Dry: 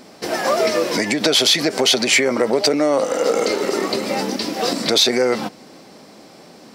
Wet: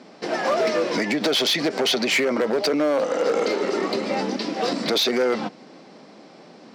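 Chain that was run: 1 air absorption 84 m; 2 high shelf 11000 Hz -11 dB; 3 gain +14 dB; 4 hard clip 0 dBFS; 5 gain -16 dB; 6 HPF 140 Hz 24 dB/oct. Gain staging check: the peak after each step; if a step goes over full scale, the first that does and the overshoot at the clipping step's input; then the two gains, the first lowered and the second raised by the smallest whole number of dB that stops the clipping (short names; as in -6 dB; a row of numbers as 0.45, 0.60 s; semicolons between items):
-6.5, -6.5, +7.5, 0.0, -16.0, -10.5 dBFS; step 3, 7.5 dB; step 3 +6 dB, step 5 -8 dB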